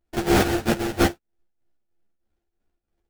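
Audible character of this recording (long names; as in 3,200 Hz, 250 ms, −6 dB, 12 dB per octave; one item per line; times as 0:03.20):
a buzz of ramps at a fixed pitch in blocks of 128 samples
tremolo triangle 3.1 Hz, depth 75%
aliases and images of a low sample rate 1,100 Hz, jitter 20%
a shimmering, thickened sound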